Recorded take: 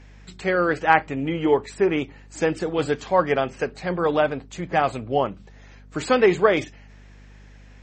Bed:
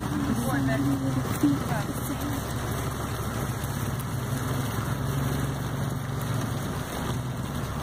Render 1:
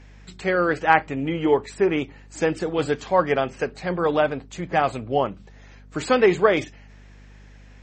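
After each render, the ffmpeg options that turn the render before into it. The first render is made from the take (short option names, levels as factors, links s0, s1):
-af anull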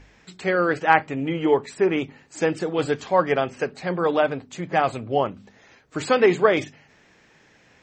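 -af "bandreject=f=50:t=h:w=4,bandreject=f=100:t=h:w=4,bandreject=f=150:t=h:w=4,bandreject=f=200:t=h:w=4,bandreject=f=250:t=h:w=4"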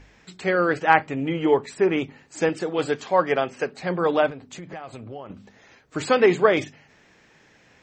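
-filter_complex "[0:a]asettb=1/sr,asplit=3[s0][s1][s2];[s0]atrim=end=2.494[s3];[s1]atrim=start=2.49:end=3.79,asetpts=PTS-STARTPTS,afade=t=in:d=0.004:c=qsin,afade=t=out:st=1.296:d=0.004:c=qsin,highpass=f=200:p=1[s4];[s2]atrim=start=3.786[s5];[s3][s4]acrossfade=d=0.004:c1=hsin:c2=qsin[s6];[s6][s5]acrossfade=d=0.004:c1=qsin:c2=hsin,asettb=1/sr,asplit=3[s7][s8][s9];[s7]atrim=end=4.304[s10];[s8]atrim=start=4.3:end=5.3,asetpts=PTS-STARTPTS,afade=t=in:d=0.004:c=qsin,afade=t=out:st=0.996:d=0.004:c=qsin,acompressor=threshold=0.02:ratio=6:attack=3.2:release=140:knee=1:detection=peak[s11];[s9]atrim=start=5.296[s12];[s10][s11]acrossfade=d=0.004:c1=hsin:c2=qsin[s13];[s13][s12]acrossfade=d=0.004:c1=qsin:c2=hsin"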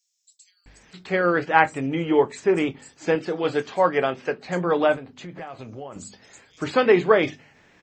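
-filter_complex "[0:a]asplit=2[s0][s1];[s1]adelay=23,volume=0.224[s2];[s0][s2]amix=inputs=2:normalize=0,acrossover=split=6000[s3][s4];[s3]adelay=660[s5];[s5][s4]amix=inputs=2:normalize=0"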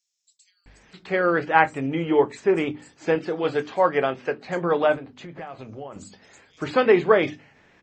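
-af "highshelf=f=6800:g=-10.5,bandreject=f=60:t=h:w=6,bandreject=f=120:t=h:w=6,bandreject=f=180:t=h:w=6,bandreject=f=240:t=h:w=6,bandreject=f=300:t=h:w=6"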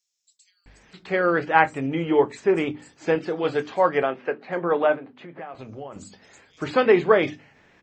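-filter_complex "[0:a]asettb=1/sr,asplit=3[s0][s1][s2];[s0]atrim=end=4.034[s3];[s1]atrim=start=4.03:end=5.55,asetpts=PTS-STARTPTS,afade=t=in:d=0.004:c=qsin,afade=t=out:st=1.516:d=0.004:c=qsin,highpass=200,lowpass=2700[s4];[s2]atrim=start=5.546[s5];[s3][s4]acrossfade=d=0.004:c1=hsin:c2=qsin[s6];[s6][s5]acrossfade=d=0.004:c1=qsin:c2=hsin"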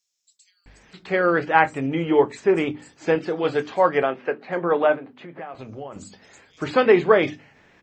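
-af "volume=1.19,alimiter=limit=0.794:level=0:latency=1"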